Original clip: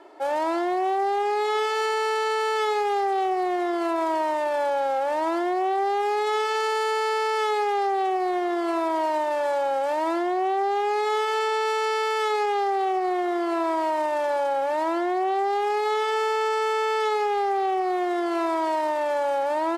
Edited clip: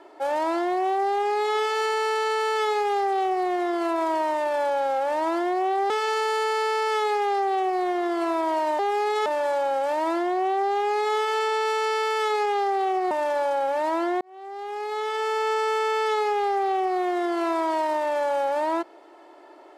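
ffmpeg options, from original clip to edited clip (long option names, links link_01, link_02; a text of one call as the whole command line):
ffmpeg -i in.wav -filter_complex "[0:a]asplit=6[link_01][link_02][link_03][link_04][link_05][link_06];[link_01]atrim=end=5.902[link_07];[link_02]atrim=start=6.368:end=9.262[link_08];[link_03]atrim=start=5.898:end=6.372[link_09];[link_04]atrim=start=9.258:end=13.112[link_10];[link_05]atrim=start=14.048:end=15.15,asetpts=PTS-STARTPTS,afade=type=out:start_time=1.098:duration=0.004:curve=hsin[link_11];[link_06]atrim=start=15.15,asetpts=PTS-STARTPTS,afade=type=in:duration=1.3[link_12];[link_07][link_08]acrossfade=duration=0.004:curve1=hsin:curve2=hsin[link_13];[link_13][link_09]acrossfade=duration=0.004:curve1=hsin:curve2=hsin[link_14];[link_14][link_10]acrossfade=duration=0.004:curve1=hsin:curve2=hsin[link_15];[link_11][link_12]concat=n=2:v=0:a=1[link_16];[link_15][link_16]acrossfade=duration=0.004:curve1=hsin:curve2=hsin" out.wav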